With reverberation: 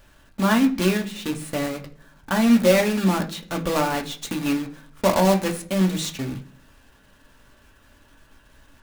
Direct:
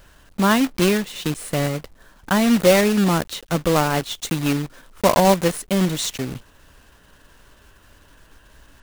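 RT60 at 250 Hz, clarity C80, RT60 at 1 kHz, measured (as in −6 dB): 0.75 s, 19.0 dB, 0.45 s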